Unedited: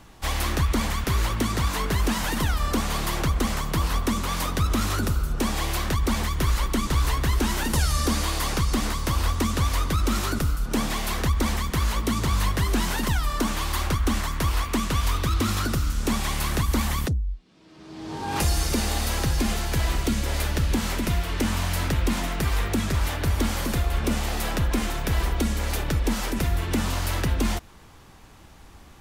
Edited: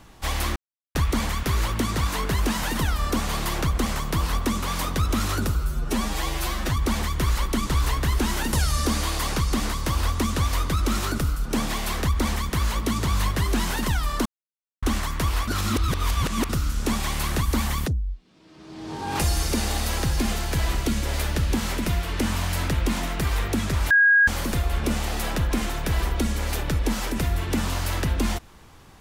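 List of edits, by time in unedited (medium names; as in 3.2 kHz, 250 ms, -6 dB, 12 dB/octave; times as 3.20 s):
0.56 s: insert silence 0.39 s
5.16–5.97 s: stretch 1.5×
13.46–14.03 s: mute
14.68–15.70 s: reverse
23.11–23.48 s: bleep 1.64 kHz -13 dBFS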